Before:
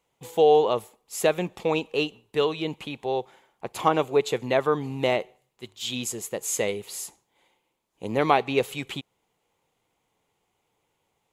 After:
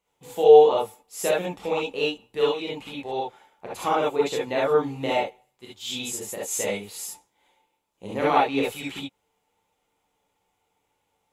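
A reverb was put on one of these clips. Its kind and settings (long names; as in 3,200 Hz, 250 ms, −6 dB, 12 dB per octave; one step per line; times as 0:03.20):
reverb whose tail is shaped and stops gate 90 ms rising, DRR −6 dB
level −6.5 dB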